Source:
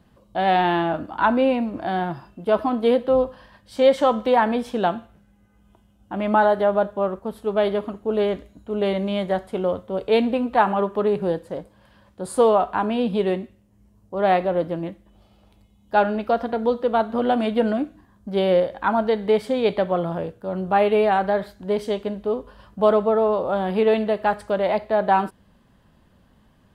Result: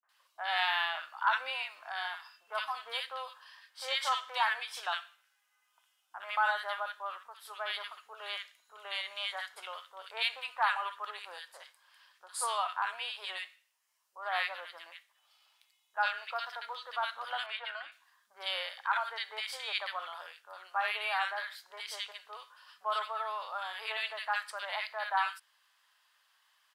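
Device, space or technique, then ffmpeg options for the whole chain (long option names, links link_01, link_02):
headphones lying on a table: -filter_complex "[0:a]highpass=frequency=1200:width=0.5412,highpass=frequency=1200:width=1.3066,equalizer=frequency=5100:width_type=o:width=0.31:gain=4,asettb=1/sr,asplit=3[link_01][link_02][link_03];[link_01]atrim=end=17.374[link_04];[link_02]atrim=start=17.37:end=17.83,asetpts=PTS-STARTPTS,afade=type=in:duration=0.004:curve=qsin,afade=type=out:start_time=0.456:duration=0.004:curve=qsin,acrossover=split=460 3600:gain=0.158 1 0.158[link_05][link_06][link_07];[link_05][link_06][link_07]amix=inputs=3:normalize=0[link_08];[link_03]atrim=start=17.826[link_09];[link_04][link_08]acrossfade=duration=0.004:curve1=hsin:curve2=qsin[link_10];[link_10][link_09]acrossfade=duration=0.004:curve1=qsin:curve2=hsin,acrossover=split=240|1500[link_11][link_12][link_13];[link_12]adelay=30[link_14];[link_13]adelay=90[link_15];[link_11][link_14][link_15]amix=inputs=3:normalize=0"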